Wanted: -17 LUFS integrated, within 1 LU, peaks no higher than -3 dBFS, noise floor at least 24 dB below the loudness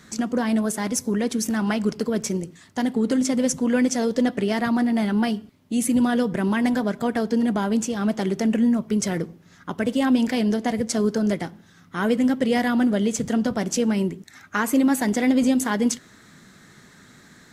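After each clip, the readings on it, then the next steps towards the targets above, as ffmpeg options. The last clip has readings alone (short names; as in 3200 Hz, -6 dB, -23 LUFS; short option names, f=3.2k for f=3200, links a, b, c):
loudness -23.0 LUFS; peak -10.0 dBFS; loudness target -17.0 LUFS
-> -af "volume=6dB"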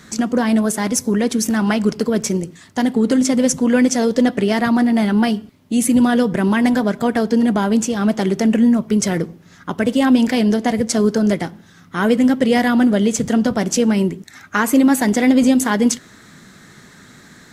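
loudness -17.0 LUFS; peak -4.0 dBFS; noise floor -46 dBFS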